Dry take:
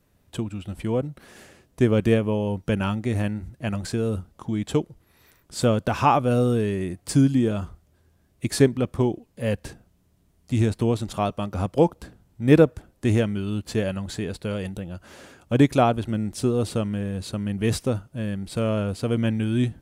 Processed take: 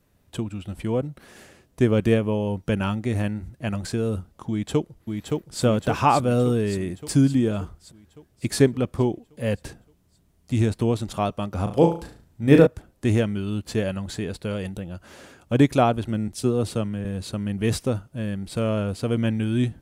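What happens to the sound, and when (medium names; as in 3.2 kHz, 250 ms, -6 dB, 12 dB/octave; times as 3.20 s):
4.50–5.63 s: echo throw 570 ms, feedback 60%, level -3.5 dB
11.63–12.67 s: flutter echo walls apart 6.2 m, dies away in 0.39 s
16.28–17.05 s: three bands expanded up and down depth 40%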